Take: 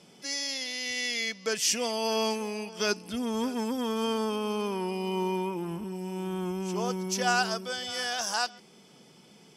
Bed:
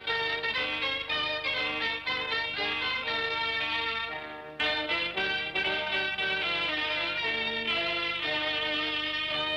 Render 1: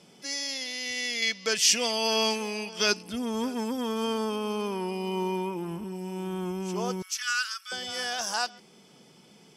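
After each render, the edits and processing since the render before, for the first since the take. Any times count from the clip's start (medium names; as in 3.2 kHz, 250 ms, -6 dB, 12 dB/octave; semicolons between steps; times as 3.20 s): 1.22–3.03 s: peaking EQ 3.5 kHz +7 dB 2.2 oct; 7.02–7.72 s: steep high-pass 1.2 kHz 72 dB/octave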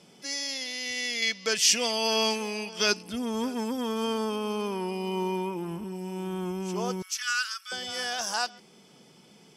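no audible change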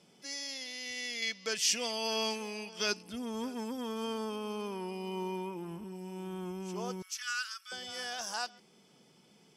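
trim -7.5 dB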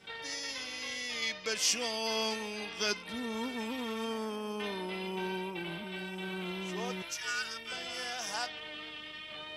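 add bed -14 dB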